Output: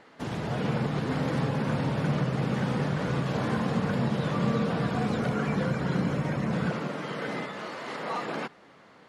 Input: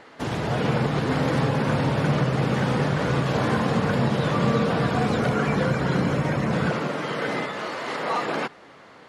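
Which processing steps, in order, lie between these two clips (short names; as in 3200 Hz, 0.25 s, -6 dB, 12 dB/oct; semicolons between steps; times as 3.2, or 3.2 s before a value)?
bell 190 Hz +4.5 dB 0.79 oct; gain -7 dB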